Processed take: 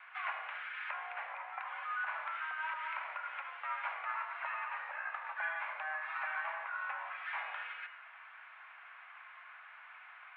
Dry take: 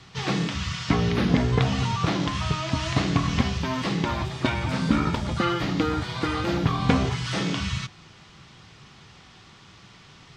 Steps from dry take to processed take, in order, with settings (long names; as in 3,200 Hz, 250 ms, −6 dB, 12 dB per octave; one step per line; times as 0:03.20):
downward compressor 6 to 1, threshold −32 dBFS, peak gain reduction 16.5 dB
on a send at −8 dB: convolution reverb RT60 0.80 s, pre-delay 62 ms
on the sum: single-sideband voice off tune +310 Hz 550–2,100 Hz
level +1.5 dB